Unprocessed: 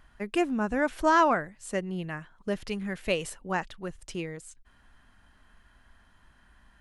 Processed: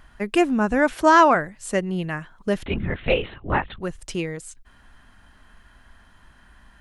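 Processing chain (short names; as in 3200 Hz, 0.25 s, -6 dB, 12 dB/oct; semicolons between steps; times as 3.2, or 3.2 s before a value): 0.93–1.34 HPF 63 Hz -> 220 Hz; 2.66–3.81 LPC vocoder at 8 kHz whisper; gain +7.5 dB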